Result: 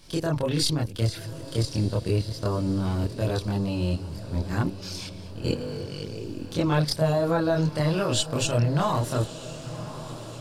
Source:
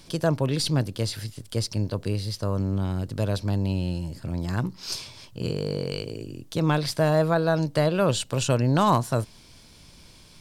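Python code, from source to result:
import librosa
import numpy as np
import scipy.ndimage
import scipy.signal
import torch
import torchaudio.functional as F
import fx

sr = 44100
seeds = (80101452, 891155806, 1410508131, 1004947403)

y = fx.level_steps(x, sr, step_db=14)
y = fx.chorus_voices(y, sr, voices=4, hz=0.56, base_ms=26, depth_ms=1.9, mix_pct=55)
y = fx.echo_diffused(y, sr, ms=1099, feedback_pct=59, wet_db=-14.0)
y = y * librosa.db_to_amplitude(7.5)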